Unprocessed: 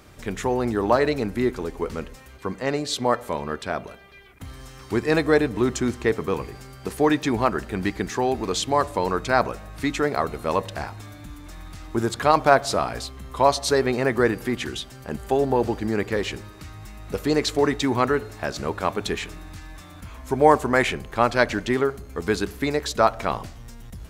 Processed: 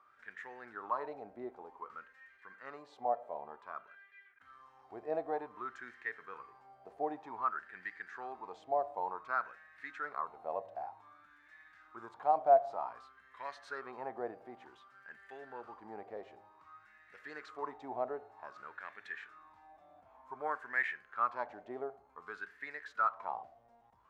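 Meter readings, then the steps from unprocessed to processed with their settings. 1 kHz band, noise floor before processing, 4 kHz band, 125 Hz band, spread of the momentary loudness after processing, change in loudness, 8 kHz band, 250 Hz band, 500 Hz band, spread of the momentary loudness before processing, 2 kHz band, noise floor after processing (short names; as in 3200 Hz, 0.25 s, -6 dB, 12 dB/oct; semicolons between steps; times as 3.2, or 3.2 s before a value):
-12.0 dB, -44 dBFS, under -30 dB, under -35 dB, 22 LU, -15.5 dB, under -35 dB, -28.0 dB, -17.0 dB, 21 LU, -14.0 dB, -65 dBFS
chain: harmonic-percussive split percussive -7 dB; wah 0.54 Hz 680–1800 Hz, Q 7.5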